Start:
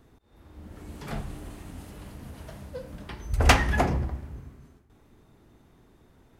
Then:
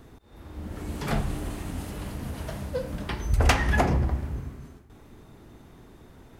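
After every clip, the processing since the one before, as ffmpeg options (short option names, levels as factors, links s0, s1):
-af "acompressor=threshold=0.0398:ratio=3,volume=2.51"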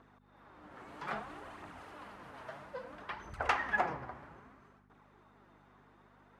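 -af "flanger=delay=0:depth=8.2:regen=39:speed=0.61:shape=triangular,aeval=exprs='val(0)+0.00708*(sin(2*PI*50*n/s)+sin(2*PI*2*50*n/s)/2+sin(2*PI*3*50*n/s)/3+sin(2*PI*4*50*n/s)/4+sin(2*PI*5*50*n/s)/5)':c=same,bandpass=f=1200:t=q:w=1.3:csg=0,volume=1.12"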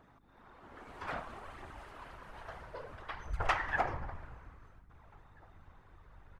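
-filter_complex "[0:a]asplit=2[s0][s1];[s1]adelay=1633,volume=0.0355,highshelf=f=4000:g=-36.7[s2];[s0][s2]amix=inputs=2:normalize=0,afftfilt=real='hypot(re,im)*cos(2*PI*random(0))':imag='hypot(re,im)*sin(2*PI*random(1))':win_size=512:overlap=0.75,asubboost=boost=10.5:cutoff=73,volume=2"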